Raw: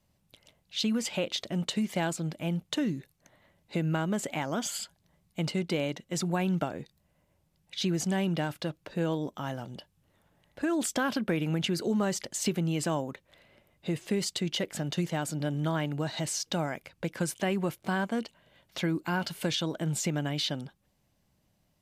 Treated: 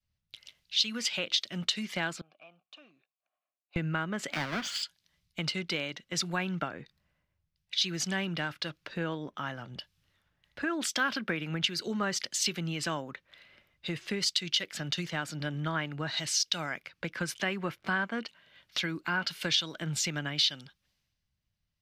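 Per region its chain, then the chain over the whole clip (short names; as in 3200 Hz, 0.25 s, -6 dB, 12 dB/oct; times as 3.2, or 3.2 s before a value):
2.21–3.76 compressor 5:1, threshold -32 dBFS + overloaded stage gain 30 dB + vowel filter a
4.32–4.83 half-waves squared off + high shelf 6100 Hz -10.5 dB + three-band expander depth 40%
whole clip: band shelf 2600 Hz +11 dB 2.6 oct; compressor 2.5:1, threshold -47 dBFS; three-band expander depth 100%; gain +8.5 dB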